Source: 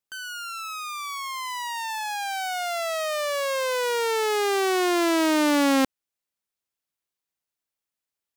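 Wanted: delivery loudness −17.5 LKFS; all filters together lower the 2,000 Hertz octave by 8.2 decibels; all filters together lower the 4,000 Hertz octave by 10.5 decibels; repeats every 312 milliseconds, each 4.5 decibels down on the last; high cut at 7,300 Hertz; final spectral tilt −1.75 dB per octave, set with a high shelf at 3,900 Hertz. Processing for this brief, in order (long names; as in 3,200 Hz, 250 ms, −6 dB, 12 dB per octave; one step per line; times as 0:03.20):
low-pass filter 7,300 Hz
parametric band 2,000 Hz −8 dB
high-shelf EQ 3,900 Hz −3.5 dB
parametric band 4,000 Hz −8.5 dB
repeating echo 312 ms, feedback 60%, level −4.5 dB
level +8 dB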